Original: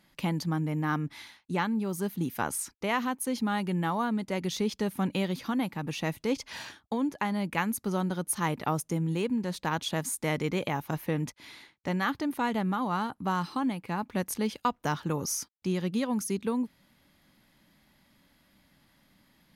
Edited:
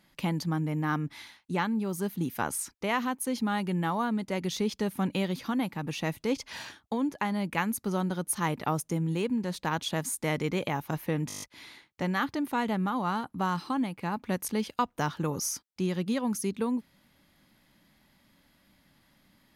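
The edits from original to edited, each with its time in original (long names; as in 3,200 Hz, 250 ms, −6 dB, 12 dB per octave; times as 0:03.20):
0:11.28: stutter 0.02 s, 8 plays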